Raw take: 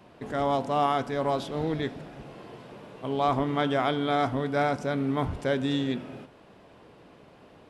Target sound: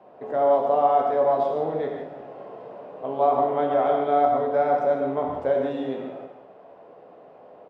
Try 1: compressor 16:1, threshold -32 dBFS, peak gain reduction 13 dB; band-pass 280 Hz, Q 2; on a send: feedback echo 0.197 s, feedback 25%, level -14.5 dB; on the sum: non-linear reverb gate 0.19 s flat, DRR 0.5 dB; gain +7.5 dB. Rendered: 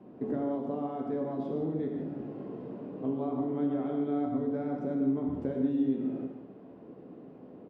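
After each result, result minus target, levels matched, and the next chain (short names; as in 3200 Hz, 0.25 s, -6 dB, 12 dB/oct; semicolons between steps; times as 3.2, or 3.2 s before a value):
250 Hz band +13.5 dB; compressor: peak gain reduction +9.5 dB
compressor 16:1, threshold -32 dBFS, peak gain reduction 13 dB; band-pass 630 Hz, Q 2; on a send: feedback echo 0.197 s, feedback 25%, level -14.5 dB; on the sum: non-linear reverb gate 0.19 s flat, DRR 0.5 dB; gain +7.5 dB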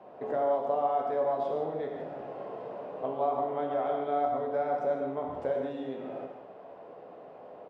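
compressor: peak gain reduction +9.5 dB
compressor 16:1, threshold -22 dBFS, peak gain reduction 3.5 dB; band-pass 630 Hz, Q 2; on a send: feedback echo 0.197 s, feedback 25%, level -14.5 dB; on the sum: non-linear reverb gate 0.19 s flat, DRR 0.5 dB; gain +7.5 dB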